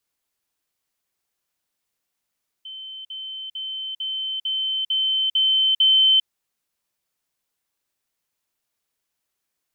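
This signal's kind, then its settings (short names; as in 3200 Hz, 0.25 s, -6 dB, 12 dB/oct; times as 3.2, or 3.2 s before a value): level ladder 3080 Hz -33.5 dBFS, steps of 3 dB, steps 8, 0.40 s 0.05 s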